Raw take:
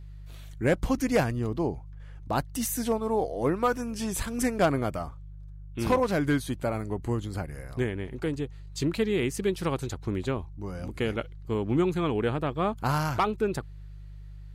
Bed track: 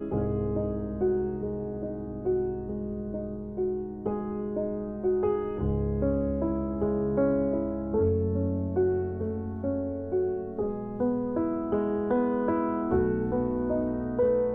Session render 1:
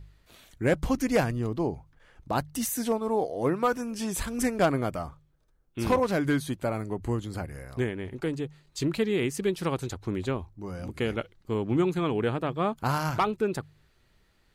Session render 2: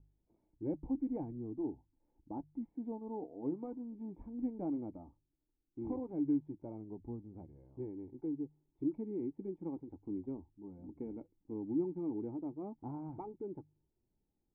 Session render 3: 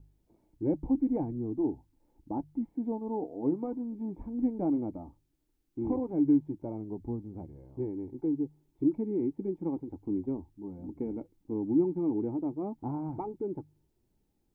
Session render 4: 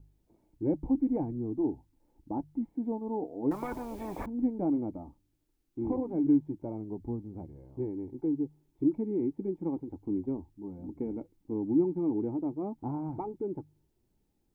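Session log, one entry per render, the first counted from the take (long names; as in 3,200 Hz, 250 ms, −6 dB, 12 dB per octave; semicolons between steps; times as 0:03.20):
hum removal 50 Hz, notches 3
flanger 0.14 Hz, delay 1.5 ms, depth 3.2 ms, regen −67%; formant resonators in series u
level +8.5 dB
0:03.51–0:04.26: every bin compressed towards the loudest bin 4 to 1; 0:05.03–0:06.27: hum removal 49.22 Hz, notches 6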